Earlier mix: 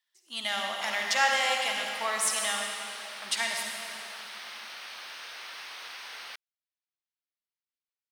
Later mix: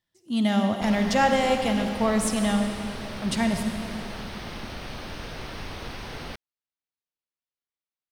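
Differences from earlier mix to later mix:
speech: send -6.5 dB; master: remove high-pass 1.3 kHz 12 dB/octave

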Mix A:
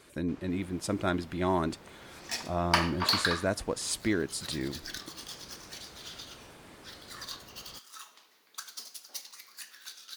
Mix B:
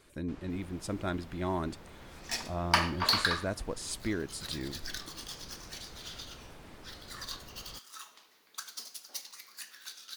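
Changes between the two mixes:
speech -5.5 dB; master: remove high-pass 120 Hz 6 dB/octave

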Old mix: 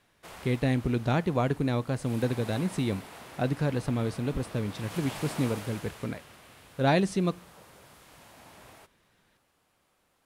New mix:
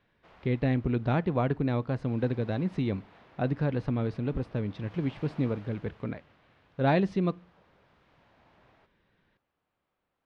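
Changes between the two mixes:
background -9.0 dB; master: add distance through air 260 m

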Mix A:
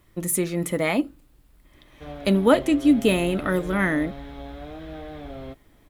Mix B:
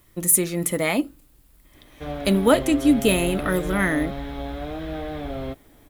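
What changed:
speech: add treble shelf 5.7 kHz +10.5 dB; background +6.5 dB

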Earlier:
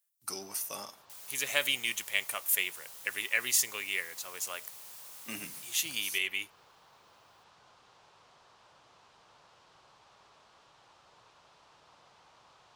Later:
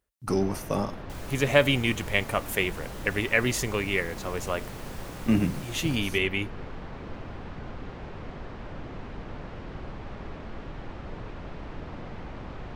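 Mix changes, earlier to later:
speech -5.5 dB; first sound: add ten-band graphic EQ 125 Hz -5 dB, 250 Hz +7 dB, 1 kHz -6 dB, 2 kHz +9 dB; master: remove differentiator

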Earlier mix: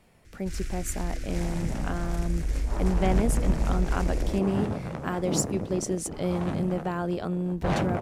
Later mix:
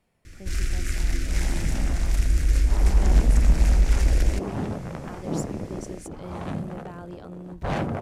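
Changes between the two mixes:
speech -11.0 dB; first sound +8.0 dB

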